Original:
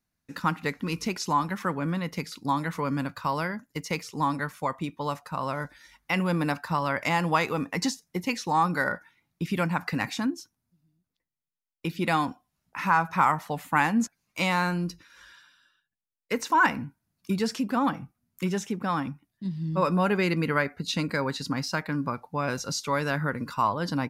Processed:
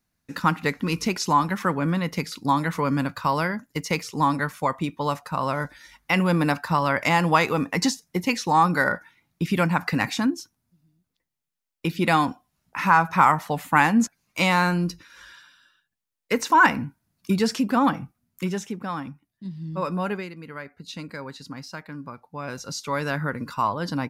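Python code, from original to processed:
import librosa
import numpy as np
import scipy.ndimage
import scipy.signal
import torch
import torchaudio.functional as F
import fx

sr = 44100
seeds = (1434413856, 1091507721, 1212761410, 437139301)

y = fx.gain(x, sr, db=fx.line((17.99, 5.0), (18.95, -3.0), (20.13, -3.0), (20.33, -15.0), (20.89, -8.0), (22.12, -8.0), (23.03, 1.0)))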